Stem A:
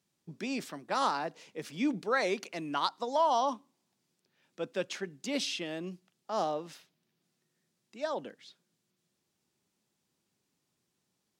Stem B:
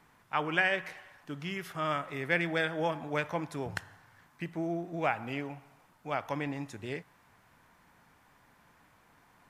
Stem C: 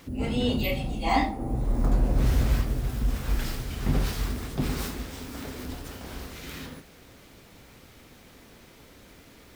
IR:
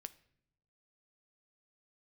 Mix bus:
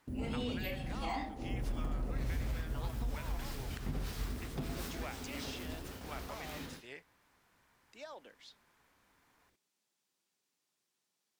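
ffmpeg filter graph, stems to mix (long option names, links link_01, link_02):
-filter_complex "[0:a]acompressor=threshold=-42dB:ratio=3,volume=-2dB[link_01];[1:a]volume=-7dB[link_02];[2:a]agate=range=-18dB:threshold=-41dB:ratio=16:detection=peak,volume=-9dB,asplit=2[link_03][link_04];[link_04]volume=-5dB[link_05];[link_01][link_02]amix=inputs=2:normalize=0,highpass=frequency=790:poles=1,acompressor=threshold=-41dB:ratio=6,volume=0dB[link_06];[3:a]atrim=start_sample=2205[link_07];[link_05][link_07]afir=irnorm=-1:irlink=0[link_08];[link_03][link_06][link_08]amix=inputs=3:normalize=0,alimiter=level_in=4dB:limit=-24dB:level=0:latency=1:release=388,volume=-4dB"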